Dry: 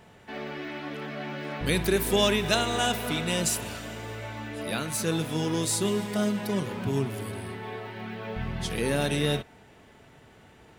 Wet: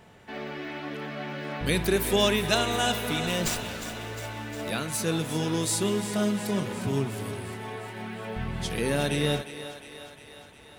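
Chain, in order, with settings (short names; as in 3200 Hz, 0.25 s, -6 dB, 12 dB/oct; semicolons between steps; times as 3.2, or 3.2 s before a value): thinning echo 0.356 s, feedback 65%, high-pass 330 Hz, level -11.5 dB; 3.27–4.7 running maximum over 3 samples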